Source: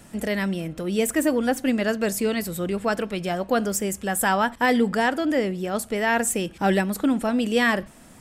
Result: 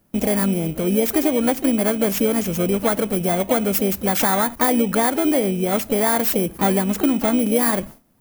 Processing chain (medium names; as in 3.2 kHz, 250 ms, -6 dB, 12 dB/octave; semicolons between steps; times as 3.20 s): bit-reversed sample order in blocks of 16 samples; short-mantissa float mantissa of 8-bit; peaking EQ 4.2 kHz -9 dB 1 oct; harmony voices +4 st -12 dB; compression, threshold -22 dBFS, peak gain reduction 7 dB; gate with hold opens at -33 dBFS; trim +7.5 dB